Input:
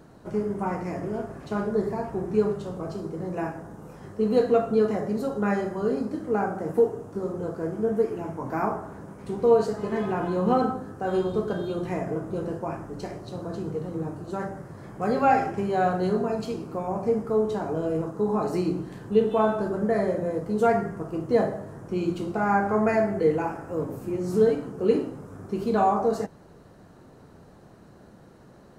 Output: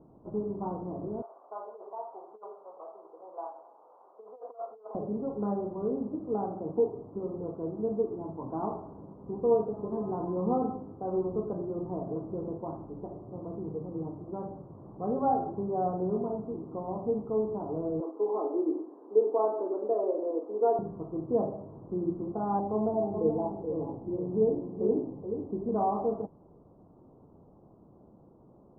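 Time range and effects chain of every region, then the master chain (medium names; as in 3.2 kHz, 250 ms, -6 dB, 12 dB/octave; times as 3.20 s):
1.22–4.95 s: compressor with a negative ratio -25 dBFS, ratio -0.5 + high-pass 630 Hz 24 dB/octave + band-stop 1.7 kHz, Q 8.3
18.00–20.79 s: steep high-pass 280 Hz 48 dB/octave + dynamic bell 440 Hz, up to +3 dB, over -32 dBFS, Q 0.83
22.59–25.69 s: low-pass 1 kHz 24 dB/octave + delay 428 ms -7.5 dB
whole clip: steep low-pass 1.1 kHz 48 dB/octave; peaking EQ 310 Hz +3.5 dB; trim -7 dB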